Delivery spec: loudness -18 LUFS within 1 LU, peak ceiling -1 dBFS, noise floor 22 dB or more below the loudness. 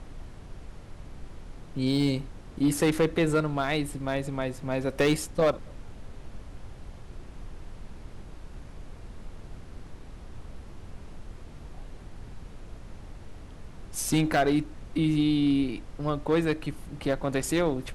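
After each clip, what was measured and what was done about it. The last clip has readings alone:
clipped samples 0.4%; clipping level -17.0 dBFS; noise floor -45 dBFS; noise floor target -50 dBFS; loudness -27.5 LUFS; peak level -17.0 dBFS; loudness target -18.0 LUFS
-> clip repair -17 dBFS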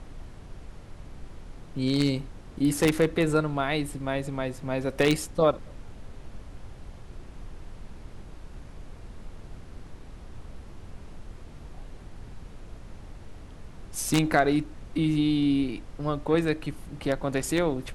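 clipped samples 0.0%; noise floor -45 dBFS; noise floor target -49 dBFS
-> noise print and reduce 6 dB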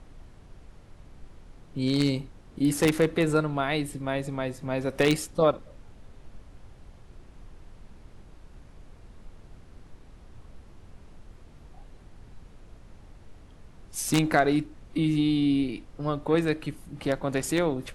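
noise floor -51 dBFS; loudness -26.5 LUFS; peak level -8.0 dBFS; loudness target -18.0 LUFS
-> trim +8.5 dB; peak limiter -1 dBFS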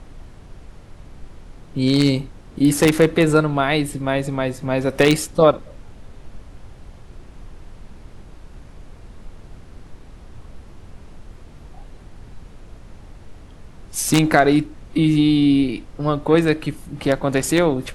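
loudness -18.5 LUFS; peak level -1.0 dBFS; noise floor -43 dBFS

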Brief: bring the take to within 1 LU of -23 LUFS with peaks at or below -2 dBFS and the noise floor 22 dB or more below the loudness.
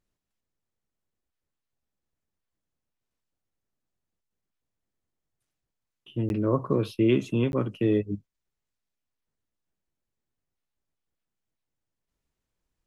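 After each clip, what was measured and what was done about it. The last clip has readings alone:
dropouts 2; longest dropout 11 ms; loudness -26.5 LUFS; peak level -11.0 dBFS; loudness target -23.0 LUFS
-> interpolate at 6.29/7.52 s, 11 ms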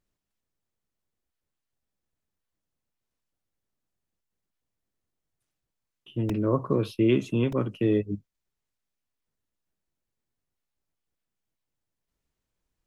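dropouts 0; loudness -26.5 LUFS; peak level -11.0 dBFS; loudness target -23.0 LUFS
-> trim +3.5 dB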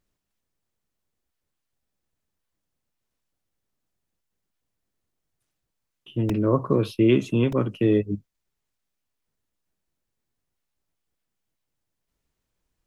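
loudness -23.0 LUFS; peak level -7.5 dBFS; noise floor -81 dBFS

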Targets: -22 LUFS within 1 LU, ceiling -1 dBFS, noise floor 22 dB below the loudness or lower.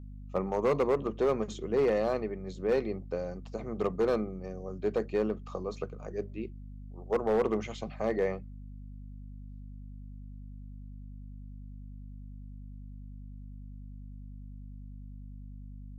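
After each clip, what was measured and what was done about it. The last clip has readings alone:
clipped samples 0.7%; clipping level -21.0 dBFS; hum 50 Hz; highest harmonic 250 Hz; hum level -42 dBFS; loudness -32.0 LUFS; peak level -21.0 dBFS; loudness target -22.0 LUFS
-> clip repair -21 dBFS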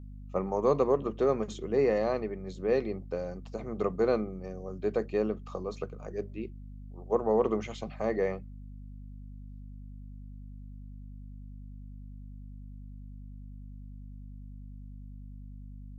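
clipped samples 0.0%; hum 50 Hz; highest harmonic 250 Hz; hum level -42 dBFS
-> de-hum 50 Hz, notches 5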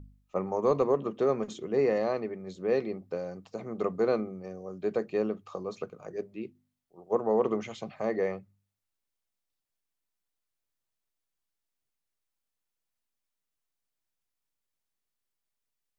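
hum not found; loudness -31.0 LUFS; peak level -14.0 dBFS; loudness target -22.0 LUFS
-> trim +9 dB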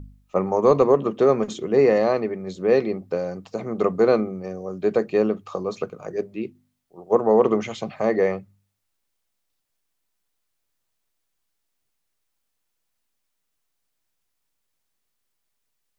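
loudness -22.0 LUFS; peak level -5.0 dBFS; noise floor -76 dBFS

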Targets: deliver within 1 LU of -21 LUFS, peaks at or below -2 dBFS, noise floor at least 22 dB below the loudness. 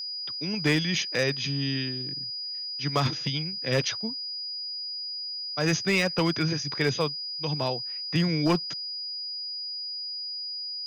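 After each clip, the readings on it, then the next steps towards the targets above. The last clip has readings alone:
clipped samples 0.3%; clipping level -17.0 dBFS; steady tone 4.9 kHz; tone level -32 dBFS; loudness -28.0 LUFS; peak level -17.0 dBFS; loudness target -21.0 LUFS
-> clip repair -17 dBFS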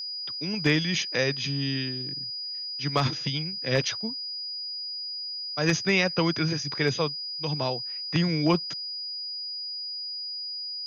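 clipped samples 0.0%; steady tone 4.9 kHz; tone level -32 dBFS
-> band-stop 4.9 kHz, Q 30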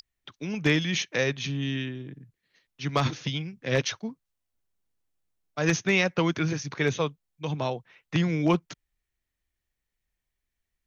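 steady tone not found; loudness -27.5 LUFS; peak level -7.5 dBFS; loudness target -21.0 LUFS
-> trim +6.5 dB; peak limiter -2 dBFS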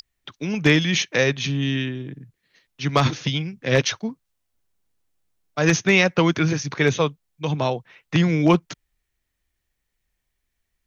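loudness -21.0 LUFS; peak level -2.0 dBFS; noise floor -77 dBFS

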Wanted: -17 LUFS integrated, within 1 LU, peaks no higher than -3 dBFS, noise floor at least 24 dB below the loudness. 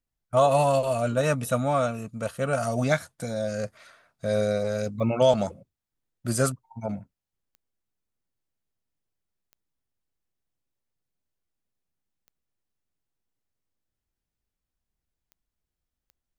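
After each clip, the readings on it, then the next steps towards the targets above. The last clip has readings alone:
clicks found 6; loudness -26.0 LUFS; peak level -9.5 dBFS; loudness target -17.0 LUFS
-> de-click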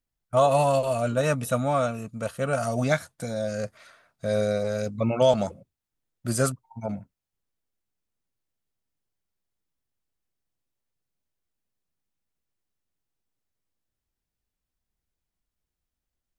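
clicks found 0; loudness -26.0 LUFS; peak level -9.5 dBFS; loudness target -17.0 LUFS
-> trim +9 dB; peak limiter -3 dBFS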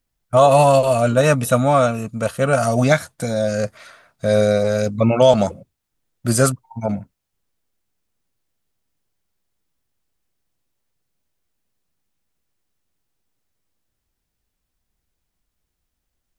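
loudness -17.5 LUFS; peak level -3.0 dBFS; noise floor -77 dBFS

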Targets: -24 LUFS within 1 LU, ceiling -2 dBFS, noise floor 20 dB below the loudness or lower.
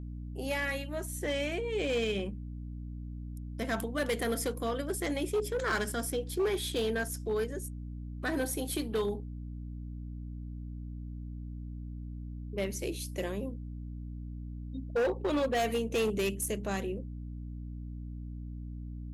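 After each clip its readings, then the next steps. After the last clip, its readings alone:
clipped samples 1.4%; clipping level -25.0 dBFS; hum 60 Hz; highest harmonic 300 Hz; hum level -38 dBFS; loudness -35.0 LUFS; peak level -25.0 dBFS; loudness target -24.0 LUFS
-> clip repair -25 dBFS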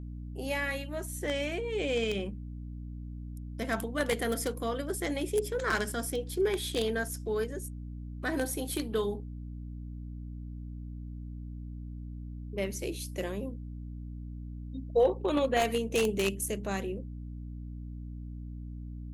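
clipped samples 0.0%; hum 60 Hz; highest harmonic 300 Hz; hum level -38 dBFS
-> hum notches 60/120/180/240/300 Hz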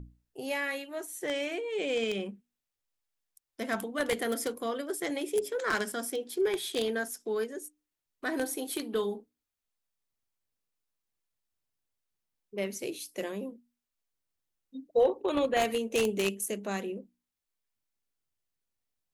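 hum not found; loudness -32.0 LUFS; peak level -15.0 dBFS; loudness target -24.0 LUFS
-> trim +8 dB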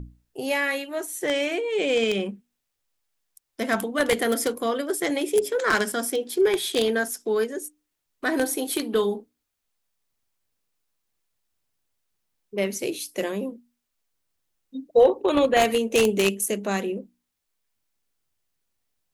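loudness -24.0 LUFS; peak level -7.0 dBFS; noise floor -80 dBFS

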